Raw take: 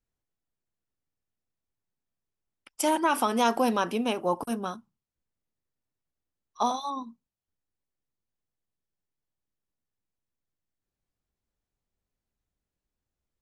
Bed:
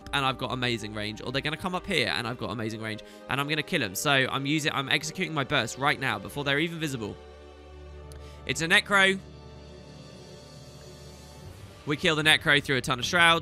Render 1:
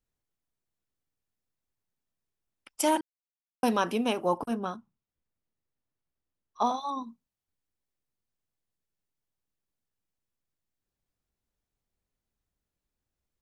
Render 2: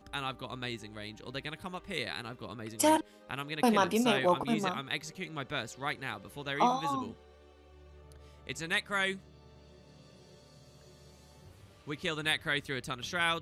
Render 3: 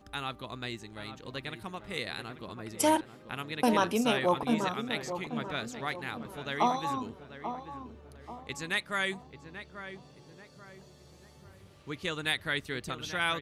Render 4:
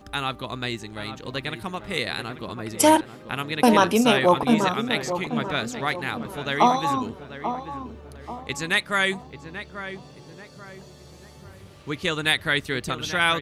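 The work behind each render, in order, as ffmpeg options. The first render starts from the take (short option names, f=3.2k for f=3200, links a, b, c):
-filter_complex "[0:a]asettb=1/sr,asplit=3[a][b][c];[a]atrim=end=4.384[d];[b]atrim=start=4.38:end=6.89,asetpts=PTS-STARTPTS,afade=t=in:d=0.004:c=qsin,afade=t=out:st=2.506:d=0.004:c=qsin,lowpass=f=2.7k:p=1[e];[c]atrim=start=6.886[f];[d][e]acrossfade=d=0.004:c1=hsin:c2=qsin[g];[g][f]acrossfade=d=0.004:c1=qsin:c2=hsin,asplit=3[h][i][j];[h]atrim=end=3.01,asetpts=PTS-STARTPTS,afade=t=out:st=3.006:d=0.004:c=hsin[k];[i]atrim=start=3.01:end=3.63,asetpts=PTS-STARTPTS,volume=0[l];[j]atrim=start=3.63,asetpts=PTS-STARTPTS,afade=t=in:d=0.004:c=hsin[m];[k][l][m]concat=n=3:v=0:a=1"
-filter_complex "[1:a]volume=-10.5dB[a];[0:a][a]amix=inputs=2:normalize=0"
-filter_complex "[0:a]asplit=2[a][b];[b]adelay=837,lowpass=f=1.4k:p=1,volume=-9dB,asplit=2[c][d];[d]adelay=837,lowpass=f=1.4k:p=1,volume=0.46,asplit=2[e][f];[f]adelay=837,lowpass=f=1.4k:p=1,volume=0.46,asplit=2[g][h];[h]adelay=837,lowpass=f=1.4k:p=1,volume=0.46,asplit=2[i][j];[j]adelay=837,lowpass=f=1.4k:p=1,volume=0.46[k];[a][c][e][g][i][k]amix=inputs=6:normalize=0"
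-af "volume=9dB"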